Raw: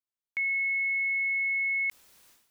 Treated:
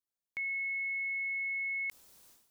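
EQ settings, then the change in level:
parametric band 2,100 Hz −7 dB 1.7 octaves
0.0 dB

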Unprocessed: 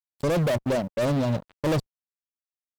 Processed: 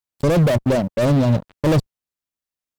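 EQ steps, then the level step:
low-shelf EQ 290 Hz +6 dB
+4.5 dB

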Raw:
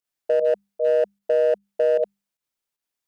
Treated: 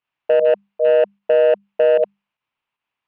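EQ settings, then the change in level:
octave-band graphic EQ 125/250/1,000 Hz +8/+3/+12 dB
dynamic equaliser 210 Hz, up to +3 dB, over −30 dBFS, Q 0.77
low-pass with resonance 2,700 Hz, resonance Q 3.4
0.0 dB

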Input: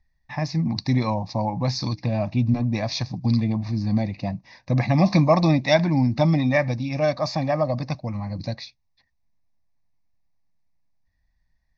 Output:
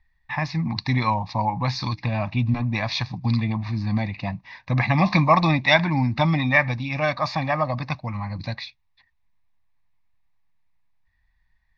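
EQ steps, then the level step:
low-shelf EQ 170 Hz +8.5 dB
flat-topped bell 1,800 Hz +13.5 dB 2.5 octaves
−6.0 dB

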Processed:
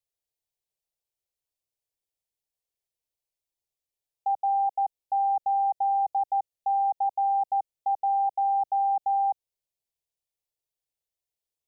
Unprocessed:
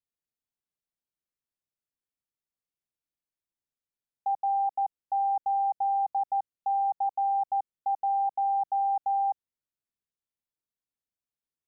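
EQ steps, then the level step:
phaser with its sweep stopped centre 570 Hz, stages 4
+4.0 dB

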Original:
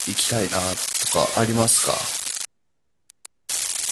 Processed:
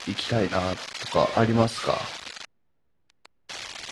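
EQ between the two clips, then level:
high-frequency loss of the air 230 metres
0.0 dB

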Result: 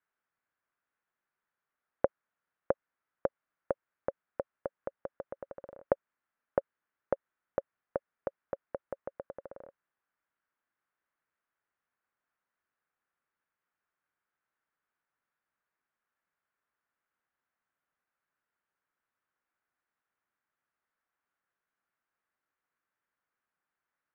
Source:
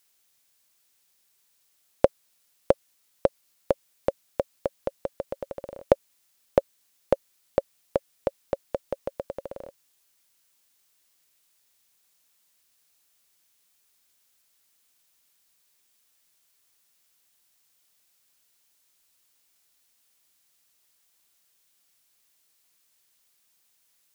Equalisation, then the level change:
transistor ladder low-pass 1,800 Hz, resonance 45%
low-shelf EQ 63 Hz −7 dB
−1.0 dB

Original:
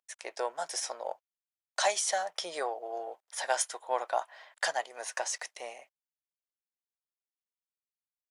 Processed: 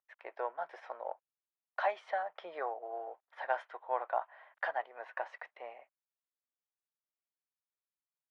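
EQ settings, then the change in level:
low-pass filter 1,400 Hz 12 dB per octave
high-frequency loss of the air 470 metres
spectral tilt +4.5 dB per octave
+1.0 dB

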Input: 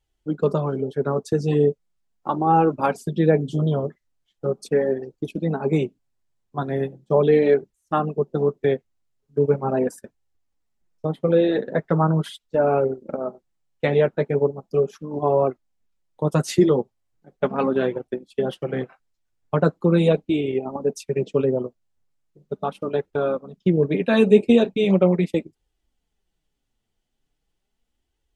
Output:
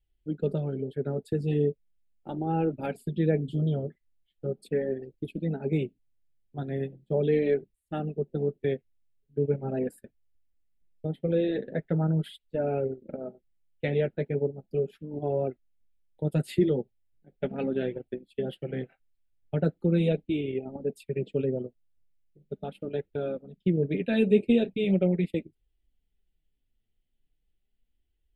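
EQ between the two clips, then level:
low-shelf EQ 71 Hz +10 dB
phaser with its sweep stopped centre 2,600 Hz, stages 4
−6.5 dB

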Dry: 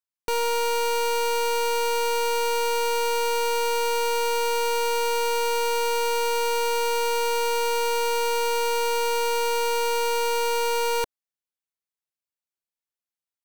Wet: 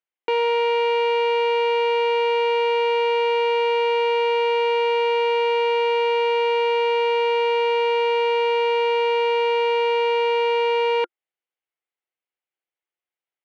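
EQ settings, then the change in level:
loudspeaker in its box 330–3,400 Hz, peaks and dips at 350 Hz +9 dB, 500 Hz +6 dB, 770 Hz +7 dB, 1,400 Hz +5 dB, 2,100 Hz +7 dB, 3,000 Hz +5 dB
notch filter 1,400 Hz, Q 22
0.0 dB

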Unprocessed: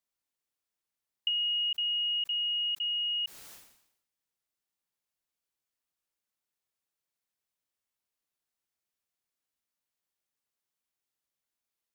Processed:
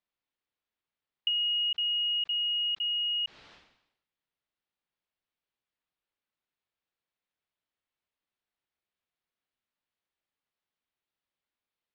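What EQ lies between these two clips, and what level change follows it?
low-pass filter 4,000 Hz 24 dB per octave
+1.5 dB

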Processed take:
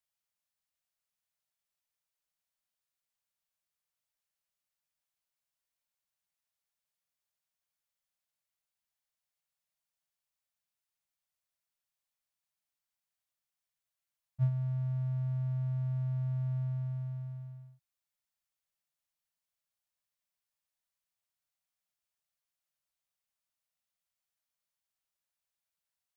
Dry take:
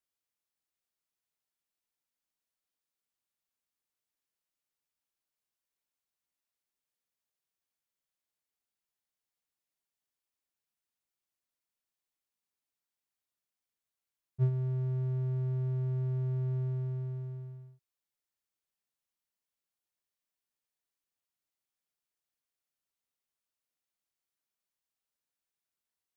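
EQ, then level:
elliptic band-stop filter 190–550 Hz, stop band 50 dB
0.0 dB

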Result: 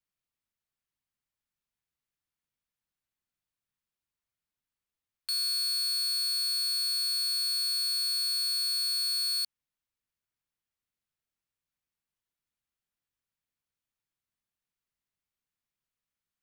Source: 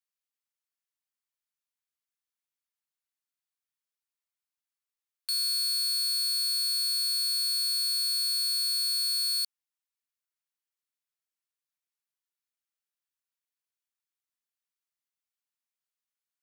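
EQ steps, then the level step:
bass and treble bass +12 dB, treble −5 dB
+2.0 dB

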